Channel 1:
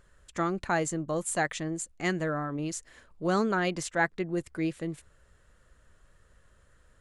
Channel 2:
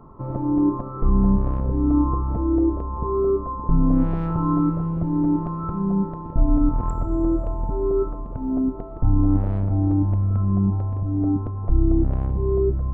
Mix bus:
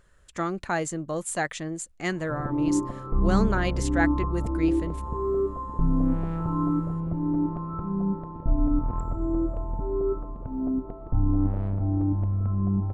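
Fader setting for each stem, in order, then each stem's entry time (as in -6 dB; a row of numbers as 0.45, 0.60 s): +0.5, -5.0 dB; 0.00, 2.10 s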